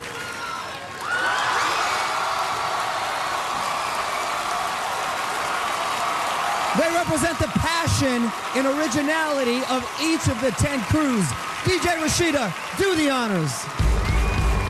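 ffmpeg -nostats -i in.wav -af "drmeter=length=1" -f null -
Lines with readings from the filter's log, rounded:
Channel 1: DR: 8.5
Overall DR: 8.5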